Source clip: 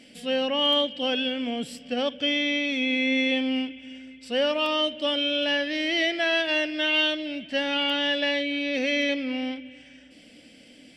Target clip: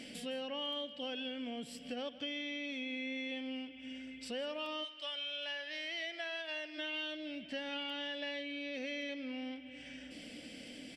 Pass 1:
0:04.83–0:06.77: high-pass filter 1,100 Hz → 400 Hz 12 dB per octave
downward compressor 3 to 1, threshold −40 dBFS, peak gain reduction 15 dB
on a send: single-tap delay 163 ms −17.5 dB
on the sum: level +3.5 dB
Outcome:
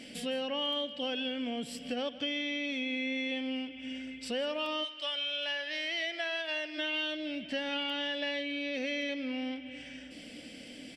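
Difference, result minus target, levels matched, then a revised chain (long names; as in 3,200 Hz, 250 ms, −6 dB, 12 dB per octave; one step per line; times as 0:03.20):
downward compressor: peak gain reduction −6.5 dB
0:04.83–0:06.77: high-pass filter 1,100 Hz → 400 Hz 12 dB per octave
downward compressor 3 to 1, threshold −49.5 dBFS, peak gain reduction 21.5 dB
on a send: single-tap delay 163 ms −17.5 dB
on the sum: level +3.5 dB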